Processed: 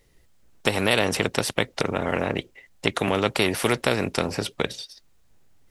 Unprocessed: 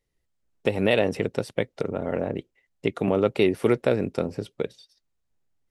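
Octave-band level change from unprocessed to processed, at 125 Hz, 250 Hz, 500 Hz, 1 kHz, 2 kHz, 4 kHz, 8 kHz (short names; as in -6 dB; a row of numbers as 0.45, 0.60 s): +1.0 dB, -1.0 dB, -2.0 dB, +6.5 dB, +7.0 dB, +10.0 dB, n/a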